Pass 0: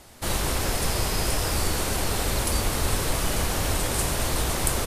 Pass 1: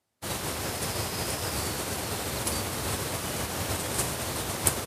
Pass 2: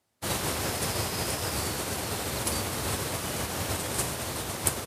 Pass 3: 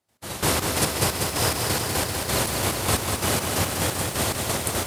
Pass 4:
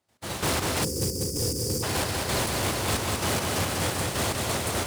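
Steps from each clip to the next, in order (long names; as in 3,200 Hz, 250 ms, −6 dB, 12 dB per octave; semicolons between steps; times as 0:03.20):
high-pass filter 82 Hz 24 dB per octave; expander for the loud parts 2.5 to 1, over −44 dBFS; level +3 dB
speech leveller 2 s
gate pattern ".x...xx..x." 177 BPM −12 dB; feedback echo at a low word length 194 ms, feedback 80%, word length 9 bits, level −4.5 dB; level +8.5 dB
running median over 3 samples; time-frequency box erased 0:00.84–0:01.83, 550–4,500 Hz; soft clipping −23 dBFS, distortion −11 dB; level +1.5 dB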